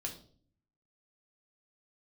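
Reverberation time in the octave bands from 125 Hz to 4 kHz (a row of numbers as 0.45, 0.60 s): 0.95, 0.80, 0.55, 0.40, 0.35, 0.40 s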